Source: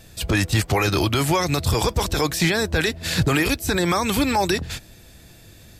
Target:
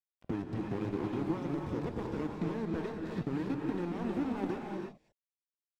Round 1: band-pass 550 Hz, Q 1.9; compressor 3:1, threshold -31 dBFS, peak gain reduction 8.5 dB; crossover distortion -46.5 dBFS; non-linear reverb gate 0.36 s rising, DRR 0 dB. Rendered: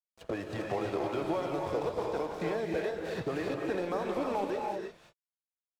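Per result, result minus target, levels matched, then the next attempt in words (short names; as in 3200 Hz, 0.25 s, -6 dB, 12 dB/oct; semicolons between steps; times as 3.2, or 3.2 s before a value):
250 Hz band -5.0 dB; crossover distortion: distortion -7 dB
band-pass 260 Hz, Q 1.9; compressor 3:1, threshold -31 dBFS, peak gain reduction 9.5 dB; crossover distortion -46.5 dBFS; non-linear reverb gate 0.36 s rising, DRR 0 dB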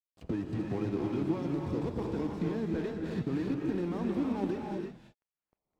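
crossover distortion: distortion -8 dB
band-pass 260 Hz, Q 1.9; compressor 3:1, threshold -31 dBFS, peak gain reduction 9.5 dB; crossover distortion -38 dBFS; non-linear reverb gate 0.36 s rising, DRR 0 dB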